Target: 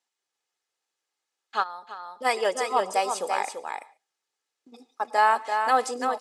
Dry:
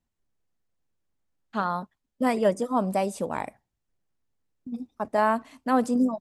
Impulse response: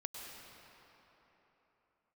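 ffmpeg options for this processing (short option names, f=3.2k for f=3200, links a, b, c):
-filter_complex "[0:a]highpass=660,lowpass=6.8k,highshelf=f=3.6k:g=9,aecho=1:1:2.4:0.44,aecho=1:1:338:0.501,asplit=2[a][b];[1:a]atrim=start_sample=2205,afade=t=out:st=0.2:d=0.01,atrim=end_sample=9261[c];[b][c]afir=irnorm=-1:irlink=0,volume=-8dB[d];[a][d]amix=inputs=2:normalize=0,asplit=3[e][f][g];[e]afade=t=out:st=1.62:d=0.02[h];[f]acompressor=threshold=-38dB:ratio=4,afade=t=in:st=1.62:d=0.02,afade=t=out:st=2.24:d=0.02[i];[g]afade=t=in:st=2.24:d=0.02[j];[h][i][j]amix=inputs=3:normalize=0,volume=1.5dB"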